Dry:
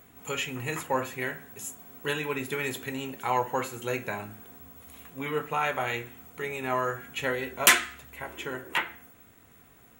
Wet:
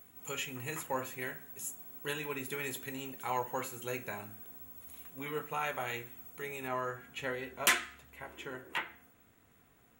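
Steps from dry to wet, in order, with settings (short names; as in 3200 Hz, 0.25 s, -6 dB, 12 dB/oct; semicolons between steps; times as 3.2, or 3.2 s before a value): high shelf 7200 Hz +9 dB, from 6.68 s -3 dB; gain -8 dB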